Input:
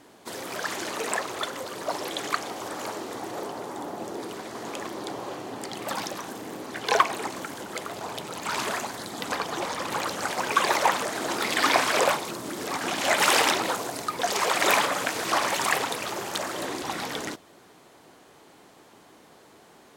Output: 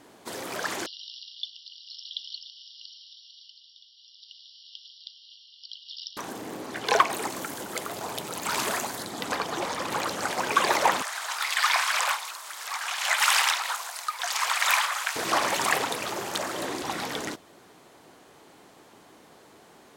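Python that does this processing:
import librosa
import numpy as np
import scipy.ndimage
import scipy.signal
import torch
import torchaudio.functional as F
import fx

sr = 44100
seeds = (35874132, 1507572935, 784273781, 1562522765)

y = fx.brickwall_bandpass(x, sr, low_hz=2800.0, high_hz=5700.0, at=(0.86, 6.17))
y = fx.high_shelf(y, sr, hz=8700.0, db=10.0, at=(7.1, 9.03))
y = fx.highpass(y, sr, hz=930.0, slope=24, at=(11.02, 15.16))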